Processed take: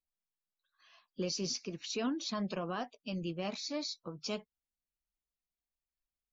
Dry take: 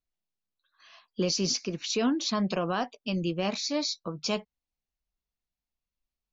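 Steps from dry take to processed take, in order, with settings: coarse spectral quantiser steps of 15 dB; trim -8 dB

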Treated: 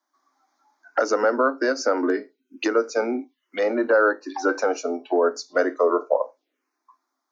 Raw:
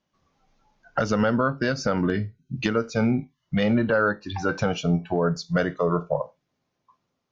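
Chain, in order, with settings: steep high-pass 270 Hz 72 dB/octave; touch-sensitive phaser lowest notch 470 Hz, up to 3.2 kHz, full sweep at -28.5 dBFS; trim +5 dB

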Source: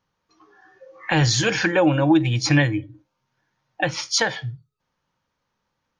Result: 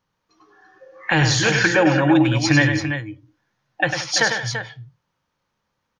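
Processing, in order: multi-tap echo 100/178/337 ms -7/-16.5/-9 dB; dynamic bell 1.6 kHz, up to +5 dB, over -37 dBFS, Q 1.4

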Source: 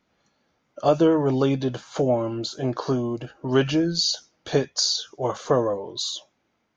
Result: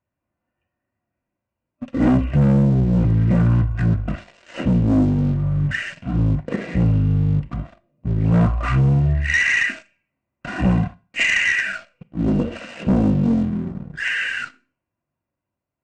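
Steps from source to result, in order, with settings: dynamic bell 210 Hz, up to +4 dB, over -33 dBFS, Q 0.79; waveshaping leveller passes 3; comb of notches 1 kHz; in parallel at -9 dB: hard clipper -18.5 dBFS, distortion -7 dB; on the sum: Chebyshev shaper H 2 -19 dB, 7 -31 dB, 8 -32 dB, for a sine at -3 dBFS; speed mistake 78 rpm record played at 33 rpm; Schroeder reverb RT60 0.35 s, combs from 27 ms, DRR 18.5 dB; trim -5.5 dB

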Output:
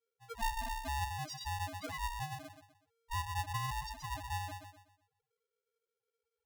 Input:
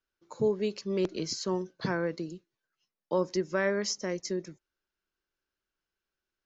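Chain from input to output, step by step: hum notches 60/120/180/240/300/360/420/480/540 Hz; compression 3:1, threshold -40 dBFS, peak gain reduction 13 dB; dynamic bell 240 Hz, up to -5 dB, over -50 dBFS, Q 0.86; bucket-brigade echo 125 ms, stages 4096, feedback 36%, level -6 dB; level-controlled noise filter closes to 1.3 kHz, open at -38.5 dBFS; loudest bins only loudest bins 1; polarity switched at an audio rate 460 Hz; trim +12 dB

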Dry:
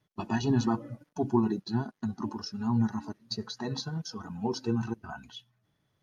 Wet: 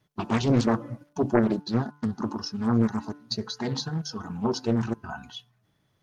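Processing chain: de-hum 146.4 Hz, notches 11; loudspeaker Doppler distortion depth 0.77 ms; trim +5 dB

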